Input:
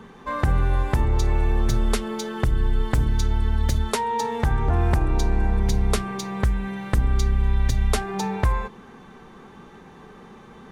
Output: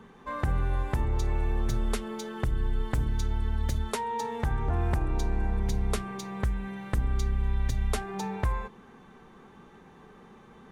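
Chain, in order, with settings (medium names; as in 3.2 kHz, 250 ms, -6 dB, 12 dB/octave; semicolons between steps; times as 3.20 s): peaking EQ 4.8 kHz -2.5 dB; trim -7 dB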